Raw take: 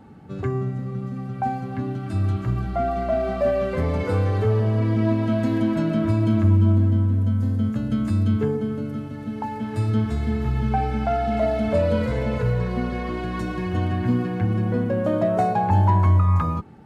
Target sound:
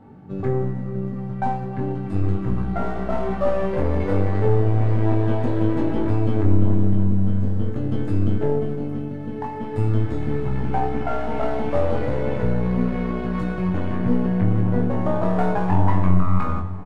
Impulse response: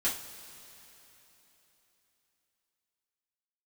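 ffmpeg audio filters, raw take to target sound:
-filter_complex "[0:a]highshelf=frequency=2500:gain=-11.5,asplit=2[link_01][link_02];[link_02]alimiter=limit=-17.5dB:level=0:latency=1,volume=-3dB[link_03];[link_01][link_03]amix=inputs=2:normalize=0,aeval=exprs='0.531*(cos(1*acos(clip(val(0)/0.531,-1,1)))-cos(1*PI/2))+0.0596*(cos(4*acos(clip(val(0)/0.531,-1,1)))-cos(4*PI/2))+0.0133*(cos(7*acos(clip(val(0)/0.531,-1,1)))-cos(7*PI/2))':channel_layout=same,aeval=exprs='clip(val(0),-1,0.0708)':channel_layout=same,asplit=2[link_04][link_05];[link_05]adelay=21,volume=-4dB[link_06];[link_04][link_06]amix=inputs=2:normalize=0,asplit=2[link_07][link_08];[1:a]atrim=start_sample=2205,asetrate=24696,aresample=44100[link_09];[link_08][link_09]afir=irnorm=-1:irlink=0,volume=-15.5dB[link_10];[link_07][link_10]amix=inputs=2:normalize=0,volume=-5.5dB"

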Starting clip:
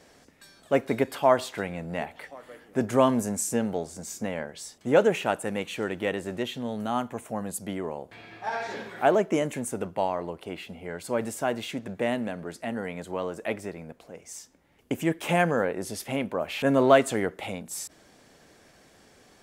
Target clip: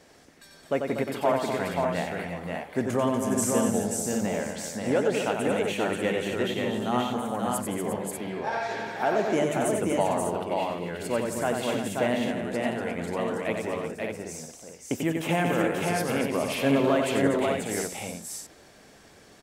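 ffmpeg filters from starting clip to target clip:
ffmpeg -i in.wav -af "alimiter=limit=-14.5dB:level=0:latency=1:release=368,aecho=1:1:92|172|241|353|534|592:0.531|0.224|0.376|0.299|0.668|0.501" out.wav

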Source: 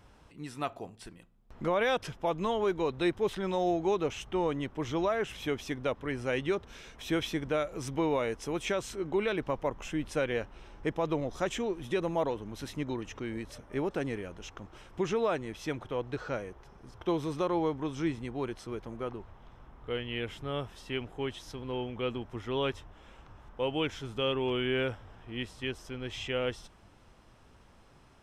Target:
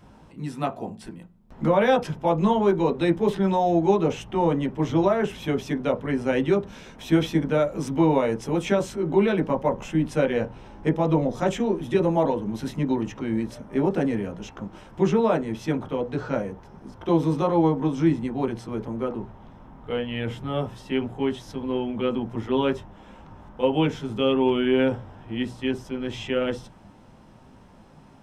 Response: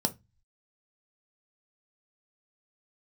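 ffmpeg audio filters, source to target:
-filter_complex "[0:a]asplit=2[link_01][link_02];[link_02]lowpass=2500[link_03];[1:a]atrim=start_sample=2205,lowpass=2400,adelay=15[link_04];[link_03][link_04]afir=irnorm=-1:irlink=0,volume=-5.5dB[link_05];[link_01][link_05]amix=inputs=2:normalize=0,volume=2.5dB"

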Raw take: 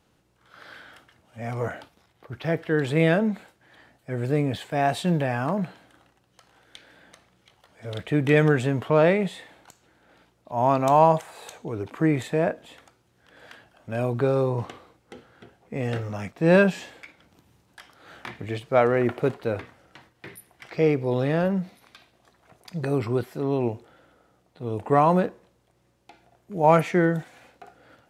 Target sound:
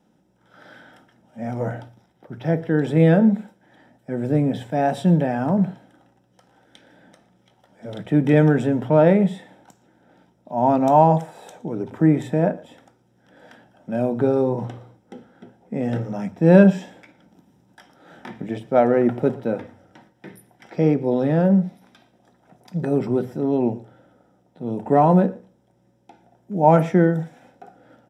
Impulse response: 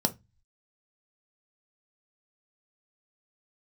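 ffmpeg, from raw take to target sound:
-filter_complex "[0:a]asplit=2[link_01][link_02];[link_02]adelay=116.6,volume=-21dB,highshelf=frequency=4000:gain=-2.62[link_03];[link_01][link_03]amix=inputs=2:normalize=0,asplit=2[link_04][link_05];[1:a]atrim=start_sample=2205,highshelf=frequency=2800:gain=-7[link_06];[link_05][link_06]afir=irnorm=-1:irlink=0,volume=-2.5dB[link_07];[link_04][link_07]amix=inputs=2:normalize=0,volume=-8dB"

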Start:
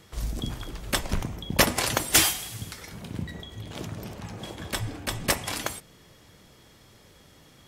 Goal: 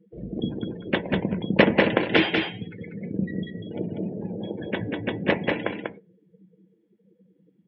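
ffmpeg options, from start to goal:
ffmpeg -i in.wav -af "highpass=160,equalizer=frequency=190:width_type=q:width=4:gain=9,equalizer=frequency=330:width_type=q:width=4:gain=5,equalizer=frequency=470:width_type=q:width=4:gain=7,equalizer=frequency=750:width_type=q:width=4:gain=-3,equalizer=frequency=1200:width_type=q:width=4:gain=-10,lowpass=frequency=2900:width=0.5412,lowpass=frequency=2900:width=1.3066,afftdn=noise_reduction=33:noise_floor=-39,aecho=1:1:193:0.631,volume=4dB" out.wav

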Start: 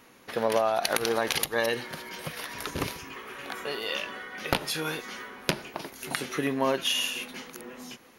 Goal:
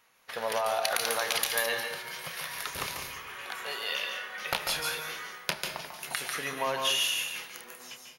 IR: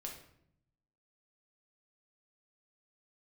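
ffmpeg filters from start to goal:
-filter_complex "[0:a]agate=range=-8dB:threshold=-43dB:ratio=16:detection=peak,lowshelf=frequency=420:gain=-10.5,asplit=2[link_01][link_02];[1:a]atrim=start_sample=2205,highshelf=frequency=8400:gain=8.5,adelay=143[link_03];[link_02][link_03]afir=irnorm=-1:irlink=0,volume=-2.5dB[link_04];[link_01][link_04]amix=inputs=2:normalize=0,asoftclip=type=tanh:threshold=-13.5dB,equalizer=frequency=300:width_type=o:width=1:gain=-10.5,asplit=2[link_05][link_06];[link_06]adelay=30,volume=-14dB[link_07];[link_05][link_07]amix=inputs=2:normalize=0"

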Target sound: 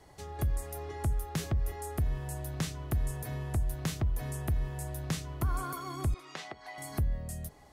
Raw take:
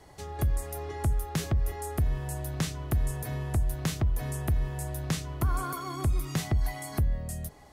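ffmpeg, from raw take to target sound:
ffmpeg -i in.wav -filter_complex "[0:a]asettb=1/sr,asplit=3[link_01][link_02][link_03];[link_01]atrim=end=6.144[link_04];[link_02]atrim=start=6.14:end=6.78,asetpts=PTS-STARTPTS,afade=type=in:duration=0.004:curve=qsin,afade=type=out:start_time=0.636:duration=0.004:curve=qsin,highpass=520,lowpass=4400[link_05];[link_03]atrim=start=6.776[link_06];[link_04][link_05]acrossfade=duration=0.004:curve1=hsin:curve2=qsin[link_07];[link_07][link_06]acrossfade=duration=0.004:curve1=qsin:curve2=hsin,volume=-3.5dB" out.wav

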